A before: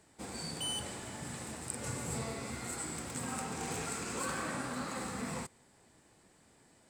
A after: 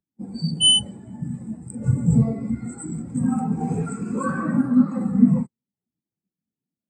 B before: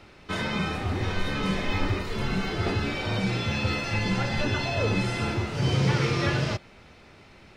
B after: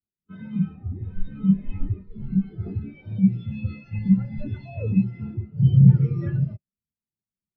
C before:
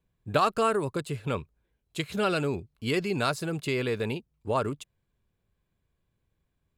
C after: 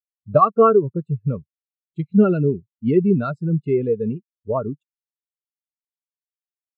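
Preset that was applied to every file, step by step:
peaking EQ 190 Hz +5 dB 0.96 oct; spectral contrast expander 2.5:1; peak normalisation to -3 dBFS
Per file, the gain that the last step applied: +14.0 dB, +6.5 dB, +8.0 dB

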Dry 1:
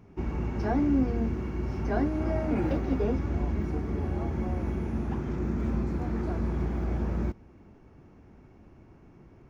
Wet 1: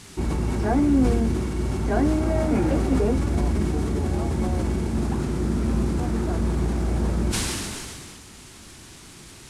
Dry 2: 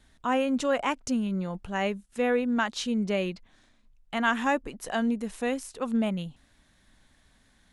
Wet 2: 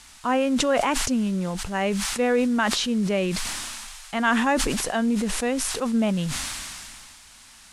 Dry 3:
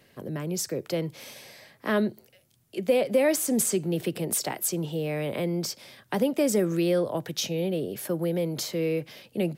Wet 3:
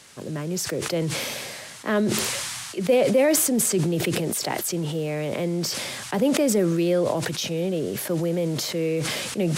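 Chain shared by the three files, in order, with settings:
treble shelf 4.5 kHz -4.5 dB; band noise 800–10000 Hz -53 dBFS; decay stretcher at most 24 dB/s; normalise loudness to -24 LUFS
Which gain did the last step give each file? +5.0 dB, +3.5 dB, +2.0 dB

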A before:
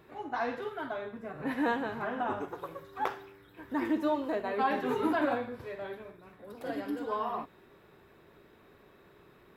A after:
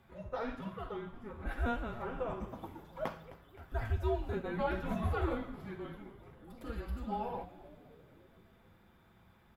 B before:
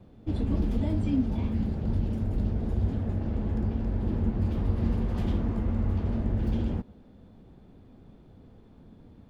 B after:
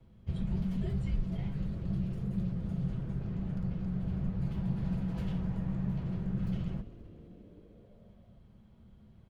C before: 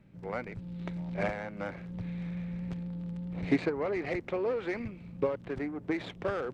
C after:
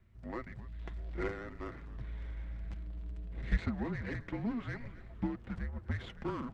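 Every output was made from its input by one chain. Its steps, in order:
comb 6.7 ms, depth 37%; frequency shift -230 Hz; on a send: frequency-shifting echo 260 ms, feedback 64%, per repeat -120 Hz, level -17 dB; on the sum: trim -5.5 dB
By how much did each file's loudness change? -5.0 LU, -6.0 LU, -5.5 LU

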